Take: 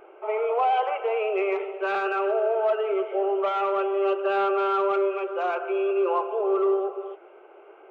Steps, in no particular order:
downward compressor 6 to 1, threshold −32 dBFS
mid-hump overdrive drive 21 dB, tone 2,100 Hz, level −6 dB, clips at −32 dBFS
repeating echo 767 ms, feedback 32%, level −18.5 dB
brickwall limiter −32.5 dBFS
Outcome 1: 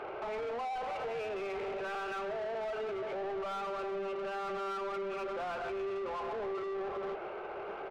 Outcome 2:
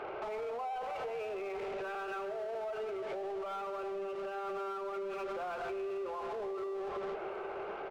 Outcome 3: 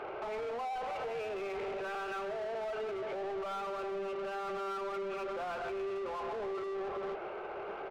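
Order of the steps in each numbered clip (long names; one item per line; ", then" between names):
downward compressor, then brickwall limiter, then mid-hump overdrive, then repeating echo
mid-hump overdrive, then repeating echo, then downward compressor, then brickwall limiter
downward compressor, then mid-hump overdrive, then brickwall limiter, then repeating echo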